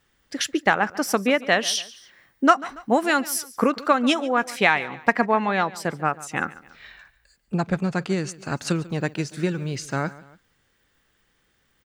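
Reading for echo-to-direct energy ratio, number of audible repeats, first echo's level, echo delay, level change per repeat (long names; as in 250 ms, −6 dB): −18.0 dB, 2, −19.0 dB, 142 ms, −6.5 dB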